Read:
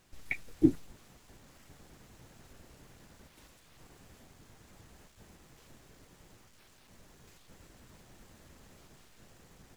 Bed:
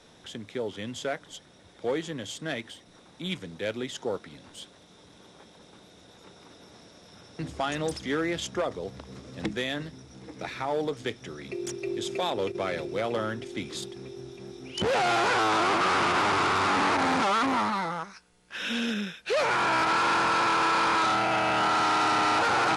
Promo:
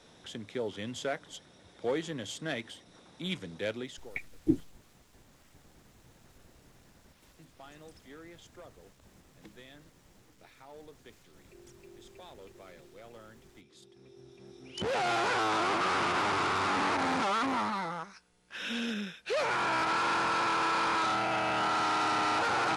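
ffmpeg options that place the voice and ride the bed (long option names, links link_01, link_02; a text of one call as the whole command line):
ffmpeg -i stem1.wav -i stem2.wav -filter_complex "[0:a]adelay=3850,volume=-3dB[link_01];[1:a]volume=14.5dB,afade=type=out:start_time=3.66:duration=0.45:silence=0.105925,afade=type=in:start_time=13.76:duration=1.33:silence=0.141254[link_02];[link_01][link_02]amix=inputs=2:normalize=0" out.wav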